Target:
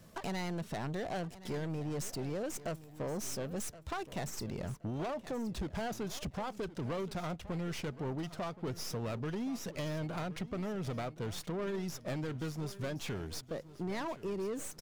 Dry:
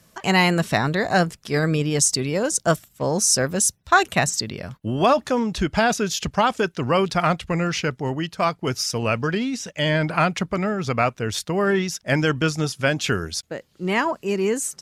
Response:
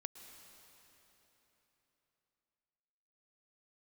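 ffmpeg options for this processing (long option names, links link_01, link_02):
-filter_complex "[0:a]equalizer=frequency=11000:width=0.34:gain=-4.5,acrossover=split=930[link_01][link_02];[link_02]aeval=exprs='max(val(0),0)':channel_layout=same[link_03];[link_01][link_03]amix=inputs=2:normalize=0,acompressor=threshold=-33dB:ratio=5,asoftclip=type=tanh:threshold=-33.5dB,aecho=1:1:1072|2144|3216:0.158|0.0428|0.0116,volume=1dB"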